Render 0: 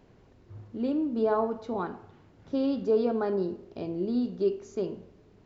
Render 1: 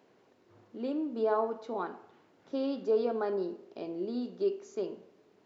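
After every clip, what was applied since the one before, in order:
high-pass filter 310 Hz 12 dB per octave
level −2 dB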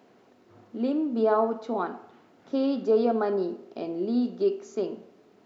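hollow resonant body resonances 230/710/1,300 Hz, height 6 dB
level +5 dB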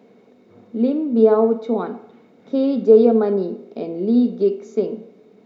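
hollow resonant body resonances 210/450/2,200/3,700 Hz, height 13 dB, ringing for 30 ms
level −1 dB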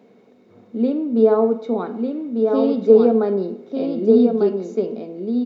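single-tap delay 1,197 ms −4.5 dB
level −1 dB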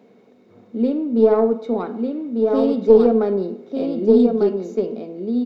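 stylus tracing distortion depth 0.054 ms

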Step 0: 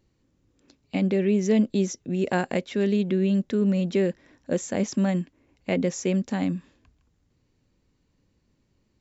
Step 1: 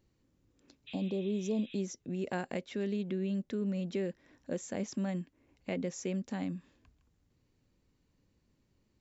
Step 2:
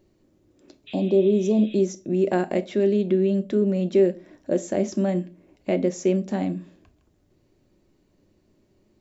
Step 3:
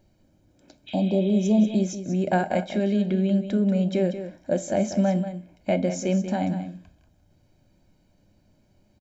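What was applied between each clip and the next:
healed spectral selection 0:00.90–0:01.76, 1,200–4,000 Hz after; downward compressor 1.5 to 1, threshold −39 dBFS, peak gain reduction 8 dB; level −4.5 dB
hollow resonant body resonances 360/610 Hz, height 11 dB, ringing for 25 ms; convolution reverb RT60 0.30 s, pre-delay 5 ms, DRR 9.5 dB; level +6 dB
comb filter 1.3 ms, depth 66%; on a send: single-tap delay 187 ms −10.5 dB

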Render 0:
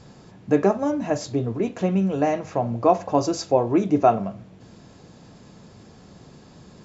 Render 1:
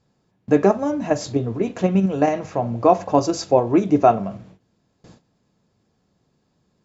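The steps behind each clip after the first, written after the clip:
noise gate with hold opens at −35 dBFS
in parallel at −2.5 dB: output level in coarse steps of 20 dB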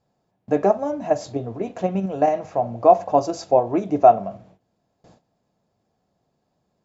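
parametric band 690 Hz +10.5 dB 0.78 octaves
level −7 dB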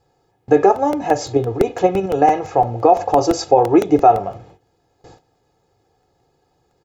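comb filter 2.4 ms, depth 79%
boost into a limiter +8.5 dB
regular buffer underruns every 0.17 s, samples 64, repeat, from 0:00.76
level −1 dB

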